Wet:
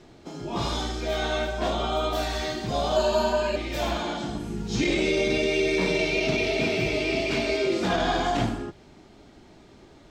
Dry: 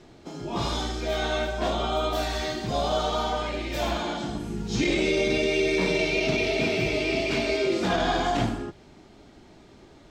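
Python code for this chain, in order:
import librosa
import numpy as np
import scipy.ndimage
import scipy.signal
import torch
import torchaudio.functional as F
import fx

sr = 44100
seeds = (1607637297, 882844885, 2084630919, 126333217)

y = fx.ripple_eq(x, sr, per_octave=1.4, db=16, at=(2.96, 3.56))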